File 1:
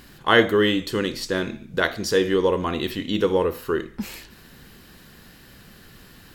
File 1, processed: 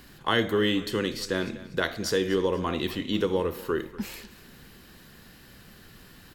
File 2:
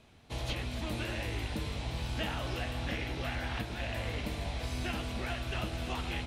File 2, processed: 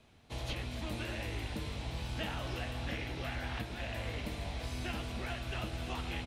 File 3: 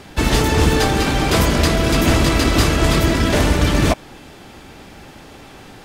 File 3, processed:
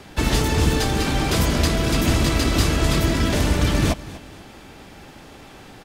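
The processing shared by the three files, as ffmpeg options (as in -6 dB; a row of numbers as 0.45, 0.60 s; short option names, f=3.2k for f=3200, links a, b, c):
-filter_complex "[0:a]acrossover=split=270|3000[a][b][c];[b]acompressor=threshold=-20dB:ratio=6[d];[a][d][c]amix=inputs=3:normalize=0,asplit=2[e][f];[f]aecho=0:1:243|486|729:0.126|0.0466|0.0172[g];[e][g]amix=inputs=2:normalize=0,volume=-3dB"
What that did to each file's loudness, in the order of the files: -5.5, -3.0, -4.0 LU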